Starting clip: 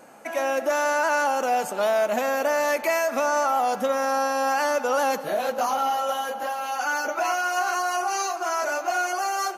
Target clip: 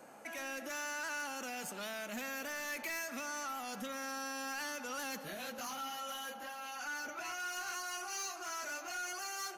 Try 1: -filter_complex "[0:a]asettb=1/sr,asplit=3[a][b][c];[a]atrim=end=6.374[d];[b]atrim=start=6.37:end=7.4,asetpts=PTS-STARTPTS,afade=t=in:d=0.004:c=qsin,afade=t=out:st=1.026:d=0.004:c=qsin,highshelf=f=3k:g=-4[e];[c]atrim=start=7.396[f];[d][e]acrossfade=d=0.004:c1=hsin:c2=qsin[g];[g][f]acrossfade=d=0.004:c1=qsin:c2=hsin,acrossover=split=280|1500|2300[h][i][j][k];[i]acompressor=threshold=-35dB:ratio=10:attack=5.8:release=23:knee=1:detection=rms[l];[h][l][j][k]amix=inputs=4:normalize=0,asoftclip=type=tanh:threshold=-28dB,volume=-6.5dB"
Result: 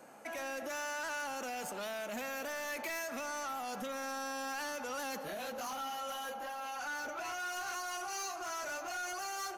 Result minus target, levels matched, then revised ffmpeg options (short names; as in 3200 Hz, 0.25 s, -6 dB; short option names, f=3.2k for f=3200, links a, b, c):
compressor: peak gain reduction -8.5 dB
-filter_complex "[0:a]asettb=1/sr,asplit=3[a][b][c];[a]atrim=end=6.374[d];[b]atrim=start=6.37:end=7.4,asetpts=PTS-STARTPTS,afade=t=in:d=0.004:c=qsin,afade=t=out:st=1.026:d=0.004:c=qsin,highshelf=f=3k:g=-4[e];[c]atrim=start=7.396[f];[d][e]acrossfade=d=0.004:c1=hsin:c2=qsin[g];[g][f]acrossfade=d=0.004:c1=qsin:c2=hsin,acrossover=split=280|1500|2300[h][i][j][k];[i]acompressor=threshold=-44.5dB:ratio=10:attack=5.8:release=23:knee=1:detection=rms[l];[h][l][j][k]amix=inputs=4:normalize=0,asoftclip=type=tanh:threshold=-28dB,volume=-6.5dB"